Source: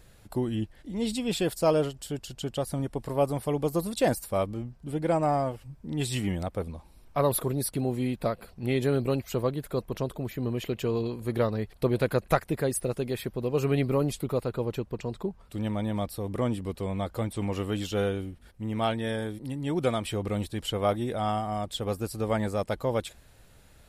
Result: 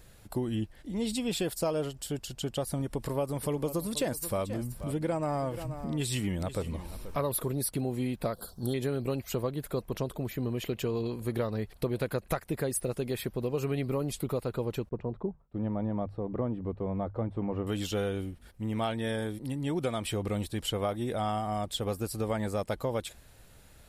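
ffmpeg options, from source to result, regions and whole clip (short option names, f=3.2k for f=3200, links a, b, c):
-filter_complex "[0:a]asettb=1/sr,asplit=3[a][b][c];[a]atrim=end=2.814[d];[b]atrim=start=2.81:end=7.49,asetpts=PTS-STARTPTS,afade=t=in:d=0.004:c=qsin,afade=t=out:st=4.676:d=0.004:c=qsin,equalizer=f=740:w=7.4:g=-6.5,acompressor=mode=upward:threshold=-28dB:ratio=2.5:attack=3.2:release=140:knee=2.83:detection=peak,aecho=1:1:481:0.168,atrim=end_sample=206388[e];[c]atrim=start=7.486[f];[d][e]acrossfade=d=0.004:c1=hsin:c2=qsin[g];[g][f]acrossfade=d=0.004:c1=qsin:c2=hsin,asettb=1/sr,asplit=3[h][i][j];[h]atrim=end=8.334[k];[i]atrim=start=8.33:end=8.74,asetpts=PTS-STARTPTS,afade=t=in:d=0.004:c=qsin,afade=t=out:st=0.406:d=0.004:c=qsin,asuperstop=centerf=2300:order=8:qfactor=1.3,highshelf=f=3.1k:g=10.5[l];[j]atrim=start=8.736[m];[k][l]acrossfade=d=0.004:c1=hsin:c2=qsin[n];[n][m]acrossfade=d=0.004:c1=qsin:c2=hsin,asettb=1/sr,asplit=3[o][p][q];[o]atrim=end=14.894[r];[p]atrim=start=14.89:end=17.67,asetpts=PTS-STARTPTS,afade=t=in:d=0.004:c=qsin,afade=t=out:st=2.776:d=0.004:c=qsin,agate=range=-33dB:threshold=-44dB:ratio=3:release=100:detection=peak,lowpass=1.1k,bandreject=f=50:t=h:w=6,bandreject=f=100:t=h:w=6,bandreject=f=150:t=h:w=6[s];[q]atrim=start=17.666[t];[r][s]acrossfade=d=0.004:c1=hsin:c2=qsin[u];[u][t]acrossfade=d=0.004:c1=qsin:c2=hsin,highshelf=f=8k:g=4,acompressor=threshold=-27dB:ratio=5"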